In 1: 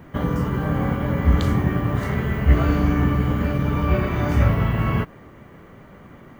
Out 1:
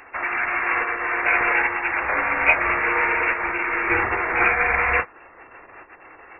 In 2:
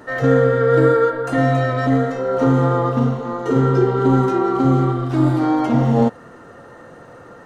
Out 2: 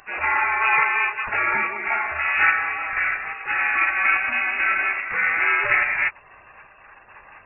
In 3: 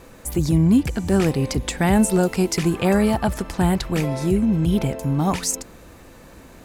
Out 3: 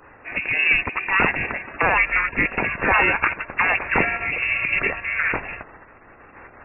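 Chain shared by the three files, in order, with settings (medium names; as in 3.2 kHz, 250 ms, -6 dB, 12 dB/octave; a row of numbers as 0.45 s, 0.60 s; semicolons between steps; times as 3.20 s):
tremolo saw up 1.2 Hz, depth 40%; bass shelf 61 Hz -10 dB; spectral gate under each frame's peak -15 dB weak; frequency inversion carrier 2.7 kHz; normalise loudness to -20 LUFS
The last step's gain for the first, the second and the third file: +14.0 dB, +10.0 dB, +14.5 dB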